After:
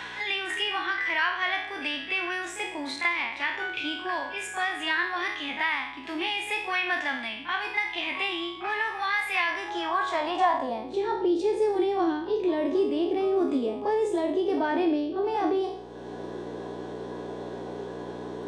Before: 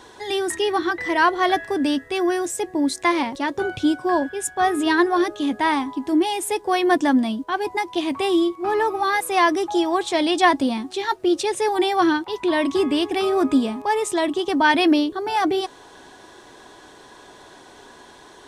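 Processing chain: spectral trails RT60 0.54 s; hum 60 Hz, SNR 15 dB; band-pass sweep 2400 Hz -> 450 Hz, 9.46–11.08; on a send: reverse echo 35 ms -12.5 dB; on the sum: three-band squash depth 70%

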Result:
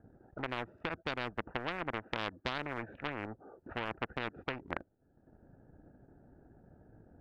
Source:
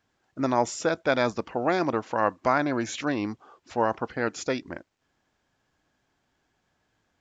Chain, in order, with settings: Wiener smoothing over 41 samples; LPF 1500 Hz 24 dB/oct; dynamic EQ 870 Hz, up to -7 dB, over -37 dBFS, Q 0.86; compressor 4:1, threshold -25 dBFS, peak gain reduction 4 dB; transient shaper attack +4 dB, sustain -10 dB; soft clip -18.5 dBFS, distortion -18 dB; spectral compressor 4:1; gain +2.5 dB

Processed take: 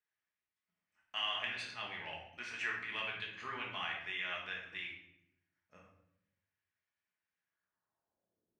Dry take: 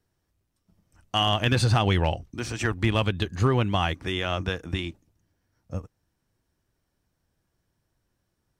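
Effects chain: 1.31–2.96 negative-ratio compressor -24 dBFS, ratio -0.5; shoebox room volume 220 m³, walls mixed, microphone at 1.4 m; band-pass sweep 2100 Hz -> 340 Hz, 7.45–8.59; gain -7.5 dB

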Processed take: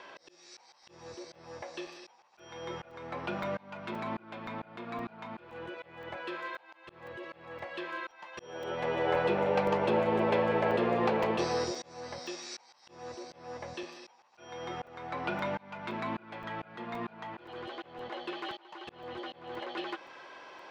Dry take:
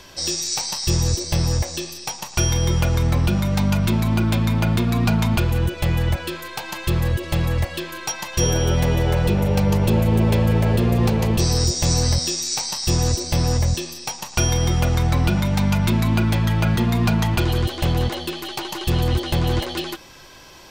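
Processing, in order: BPF 470–2000 Hz; auto swell 0.791 s; crackling interface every 0.52 s, samples 128, zero, from 0.83

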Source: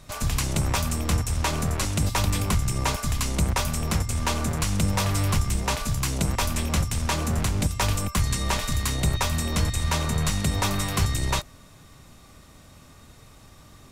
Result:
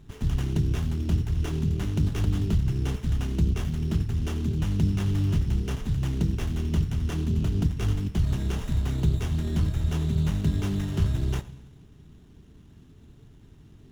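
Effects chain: FFT band-reject 460–2700 Hz; running mean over 5 samples; on a send at -17 dB: reverb RT60 1.1 s, pre-delay 3 ms; on the sum: running maximum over 9 samples

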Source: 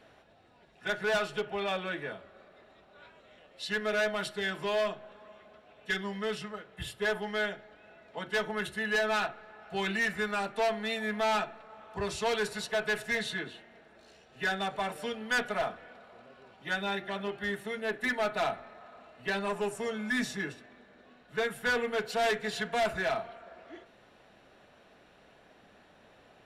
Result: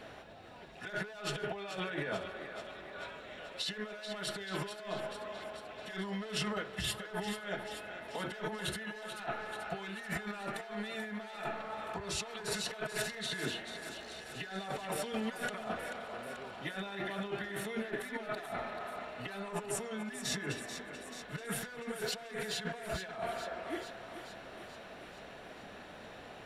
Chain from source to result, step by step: negative-ratio compressor -42 dBFS, ratio -1; on a send: thinning echo 0.436 s, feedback 67%, high-pass 370 Hz, level -9 dB; on the sum: gain +1 dB

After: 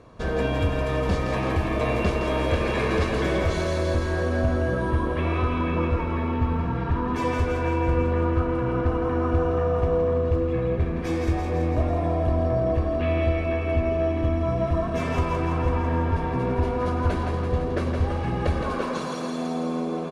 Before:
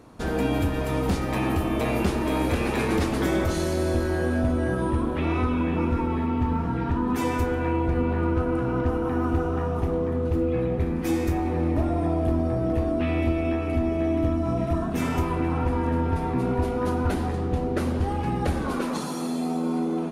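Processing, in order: Bessel low-pass 4900 Hz, order 2; comb 1.8 ms, depth 44%; thinning echo 0.166 s, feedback 66%, high-pass 420 Hz, level -5 dB

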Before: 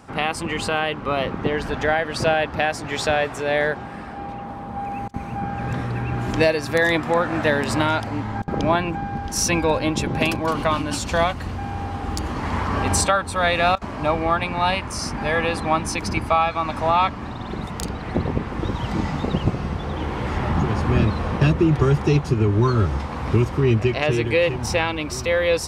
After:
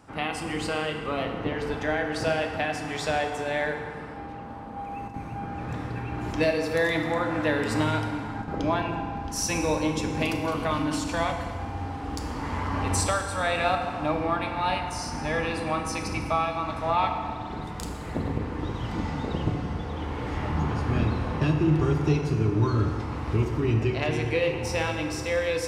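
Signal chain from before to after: FDN reverb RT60 2 s, low-frequency decay 0.85×, high-frequency decay 0.7×, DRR 2.5 dB; gain -8 dB

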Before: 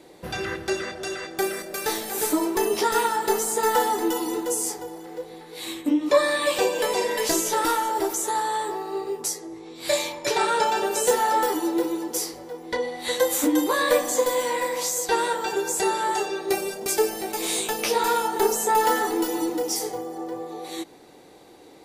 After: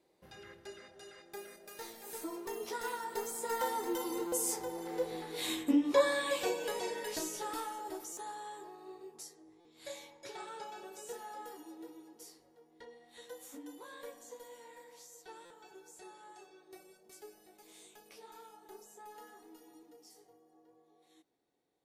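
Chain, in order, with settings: Doppler pass-by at 5.14, 13 m/s, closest 4.5 m; stuck buffer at 4.27/8.12/9.6/15.45, samples 256, times 8

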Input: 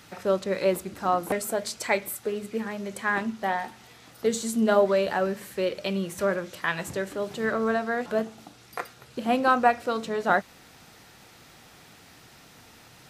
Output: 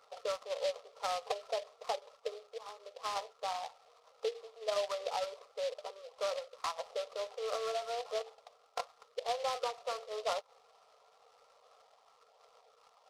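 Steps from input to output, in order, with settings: flange 0.32 Hz, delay 0.1 ms, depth 3.1 ms, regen -43%; harmonic-percussive split harmonic -7 dB; brick-wall FIR band-pass 420–1400 Hz; dynamic EQ 700 Hz, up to +3 dB, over -45 dBFS, Q 0.85; compressor 3:1, threshold -33 dBFS, peak gain reduction 8.5 dB; notch 890 Hz, Q 12; noise-modulated delay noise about 3300 Hz, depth 0.068 ms; gain +1 dB

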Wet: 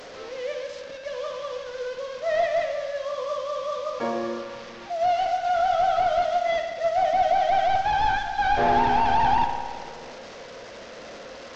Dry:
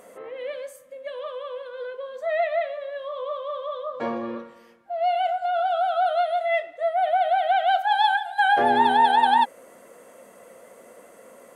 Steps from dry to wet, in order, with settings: delta modulation 32 kbps, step -35.5 dBFS; spring tank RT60 1.6 s, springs 54 ms, chirp 45 ms, DRR 5.5 dB

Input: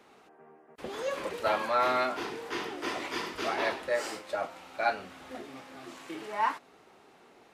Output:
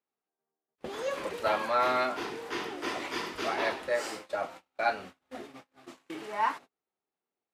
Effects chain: gate -44 dBFS, range -35 dB

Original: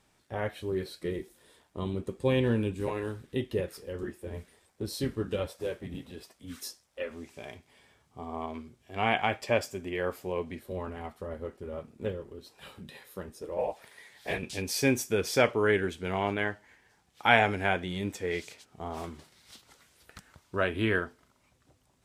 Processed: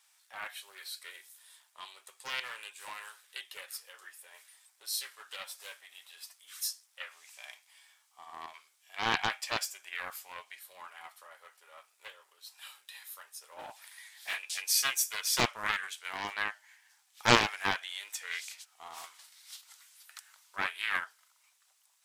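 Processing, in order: HPF 830 Hz 24 dB/oct; tilt +3.5 dB/oct; Doppler distortion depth 0.4 ms; gain -3.5 dB

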